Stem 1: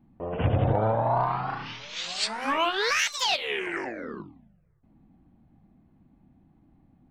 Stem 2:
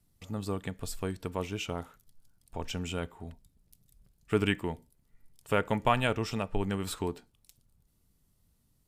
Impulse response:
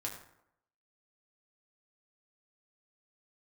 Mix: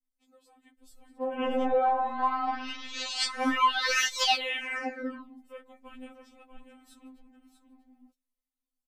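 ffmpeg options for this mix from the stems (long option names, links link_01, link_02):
-filter_complex "[0:a]adelay=1000,volume=1.5dB[link_01];[1:a]adynamicequalizer=threshold=0.01:dfrequency=1900:dqfactor=0.7:tfrequency=1900:tqfactor=0.7:attack=5:release=100:ratio=0.375:range=2:mode=cutabove:tftype=highshelf,volume=-17dB,asplit=2[link_02][link_03];[link_03]volume=-9.5dB,aecho=0:1:640:1[link_04];[link_01][link_02][link_04]amix=inputs=3:normalize=0,afftfilt=real='re*3.46*eq(mod(b,12),0)':imag='im*3.46*eq(mod(b,12),0)':win_size=2048:overlap=0.75"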